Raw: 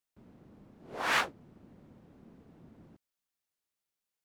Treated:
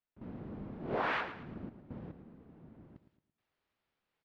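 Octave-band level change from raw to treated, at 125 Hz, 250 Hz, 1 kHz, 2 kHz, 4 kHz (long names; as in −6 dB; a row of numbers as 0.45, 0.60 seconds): +8.0, +6.5, −2.5, −5.5, −10.5 decibels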